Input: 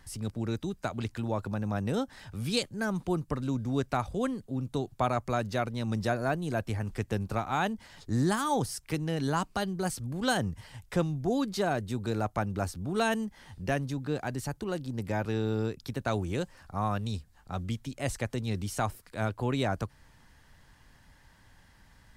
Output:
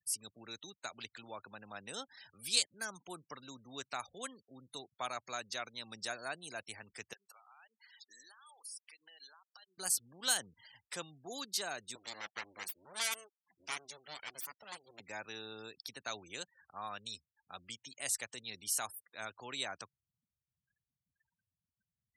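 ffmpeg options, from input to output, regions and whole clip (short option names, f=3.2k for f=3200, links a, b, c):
-filter_complex "[0:a]asettb=1/sr,asplit=3[a][b][c];[a]atrim=end=7.134[d];[b]atrim=start=7.13:end=9.78,asetpts=PTS-STARTPTS,afade=t=in:d=0.004:c=qsin,afade=t=out:st=2.646:d=0.004:c=qsin,highpass=850,acompressor=threshold=-47dB:ratio=12:attack=3.2:release=140:knee=1:detection=peak[e];[c]atrim=start=9.776[f];[d][e]acrossfade=d=0.004:c1=hsin:c2=qsin[g];[g][f]acrossfade=d=0.004:c1=qsin:c2=hsin,asettb=1/sr,asplit=3[h][i][j];[h]atrim=end=11.954[k];[i]atrim=start=11.95:end=15,asetpts=PTS-STARTPTS,afade=t=in:d=0.004:c=qsin,afade=t=out:st=3.046:d=0.004:c=qsin,lowshelf=f=200:g=-5,aeval=exprs='abs(val(0))':c=same[l];[j]atrim=start=14.996[m];[k][l]acrossfade=d=0.004:c1=hsin:c2=qsin[n];[n][m]acrossfade=d=0.004:c1=qsin:c2=hsin,highpass=60,afftfilt=real='re*gte(hypot(re,im),0.00447)':imag='im*gte(hypot(re,im),0.00447)':win_size=1024:overlap=0.75,aderivative,volume=6.5dB"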